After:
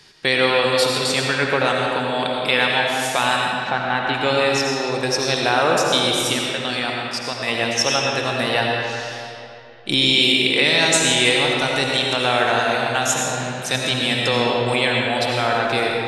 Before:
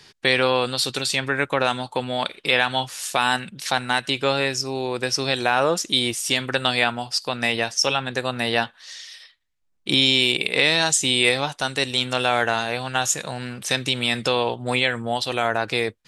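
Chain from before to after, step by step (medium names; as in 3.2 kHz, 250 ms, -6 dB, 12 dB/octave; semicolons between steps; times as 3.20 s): 3.46–4.13 s: low-pass 1.7 kHz -> 2.9 kHz 12 dB/octave; 6.33–7.48 s: level held to a coarse grid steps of 13 dB; algorithmic reverb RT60 2.8 s, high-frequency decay 0.65×, pre-delay 45 ms, DRR -1.5 dB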